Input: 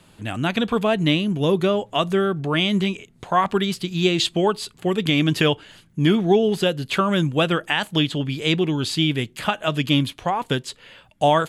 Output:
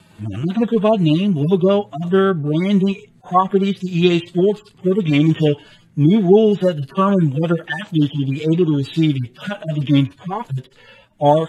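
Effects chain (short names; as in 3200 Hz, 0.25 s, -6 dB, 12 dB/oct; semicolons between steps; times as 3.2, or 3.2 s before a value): median-filter separation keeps harmonic; wow and flutter 23 cents; high shelf 7100 Hz -4.5 dB; gain +6 dB; AAC 48 kbps 48000 Hz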